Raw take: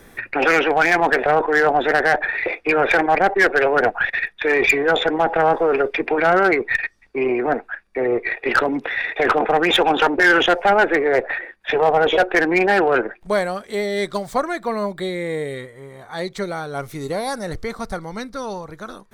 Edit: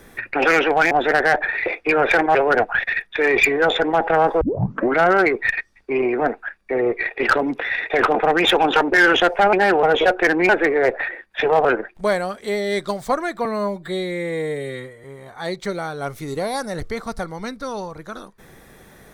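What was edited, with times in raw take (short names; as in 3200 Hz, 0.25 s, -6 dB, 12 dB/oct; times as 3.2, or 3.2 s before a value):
0.91–1.71 cut
3.15–3.61 cut
5.67 tape start 0.58 s
10.79–11.95 swap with 12.61–12.91
14.71–15.77 stretch 1.5×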